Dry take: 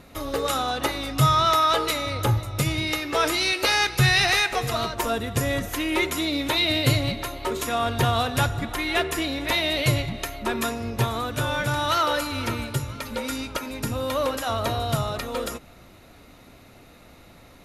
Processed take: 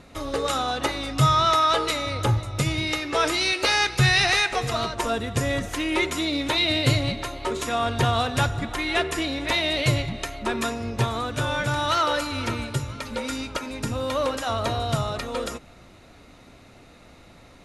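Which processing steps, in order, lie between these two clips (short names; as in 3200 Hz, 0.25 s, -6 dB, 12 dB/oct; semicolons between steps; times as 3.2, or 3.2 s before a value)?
LPF 9800 Hz 24 dB/oct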